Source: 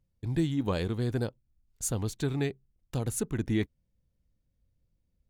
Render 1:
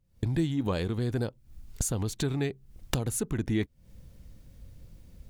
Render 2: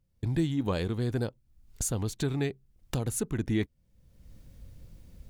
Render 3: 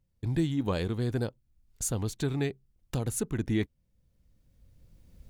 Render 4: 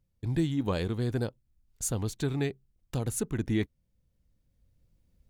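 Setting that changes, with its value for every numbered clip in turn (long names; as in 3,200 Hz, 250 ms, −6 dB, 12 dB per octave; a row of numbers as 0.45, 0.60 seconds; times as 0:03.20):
camcorder AGC, rising by: 86, 33, 13, 5.2 dB per second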